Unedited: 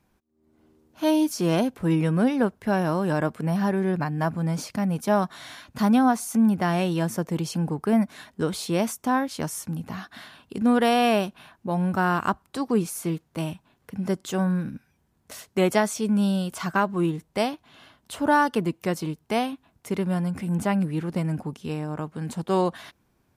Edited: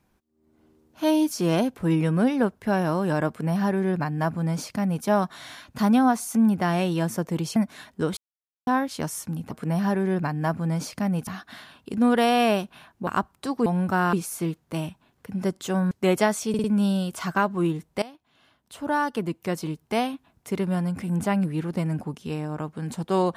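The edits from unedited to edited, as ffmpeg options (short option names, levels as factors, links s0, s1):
-filter_complex "[0:a]asplit=14[s0][s1][s2][s3][s4][s5][s6][s7][s8][s9][s10][s11][s12][s13];[s0]atrim=end=7.562[s14];[s1]atrim=start=7.958:end=8.57,asetpts=PTS-STARTPTS,afade=t=out:st=0.608:d=0.004:c=hsin[s15];[s2]atrim=start=8.57:end=9.07,asetpts=PTS-STARTPTS,volume=0[s16];[s3]atrim=start=9.07:end=9.912,asetpts=PTS-STARTPTS,afade=t=in:d=0.004:c=hsin[s17];[s4]atrim=start=3.278:end=5.042[s18];[s5]atrim=start=9.908:end=11.712[s19];[s6]atrim=start=12.178:end=12.772[s20];[s7]atrim=start=11.708:end=12.182[s21];[s8]atrim=start=12.768:end=14.552[s22];[s9]atrim=start=15.448:end=16.082[s23];[s10]atrim=start=16.028:end=16.082[s24];[s11]atrim=start=16.028:end=16.082[s25];[s12]atrim=start=16.028:end=17.41,asetpts=PTS-STARTPTS,afade=t=out:st=1.378:d=0.004:c=hsin:silence=0.11885[s26];[s13]atrim=start=17.41,asetpts=PTS-STARTPTS,afade=t=in:d=1.81:silence=0.11885[s27];[s15][s16][s17]concat=n=3:v=0:a=1[s28];[s14][s28]acrossfade=d=0.004:c1=hsin:c2=hsin[s29];[s29][s18]acrossfade=d=0.004:c1=hsin:c2=hsin[s30];[s30][s19]acrossfade=d=0.004:c1=hsin:c2=hsin[s31];[s31][s20]acrossfade=d=0.004:c1=hsin:c2=hsin[s32];[s32][s21]acrossfade=d=0.004:c1=hsin:c2=hsin[s33];[s33][s22]acrossfade=d=0.004:c1=hsin:c2=hsin[s34];[s34][s23]acrossfade=d=0.004:c1=hsin:c2=hsin[s35];[s35][s24]acrossfade=d=0.004:c1=hsin:c2=hsin[s36];[s36][s25]acrossfade=d=0.004:c1=hsin:c2=hsin[s37];[s26][s27]concat=n=2:v=0:a=1[s38];[s37][s38]acrossfade=d=0.004:c1=hsin:c2=hsin"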